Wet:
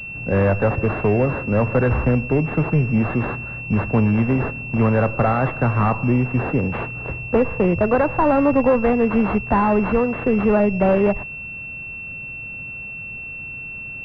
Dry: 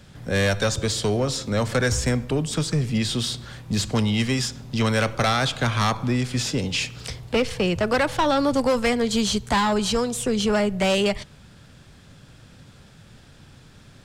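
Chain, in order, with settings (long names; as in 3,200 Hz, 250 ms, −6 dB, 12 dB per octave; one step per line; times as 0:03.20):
switching amplifier with a slow clock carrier 2,700 Hz
level +5 dB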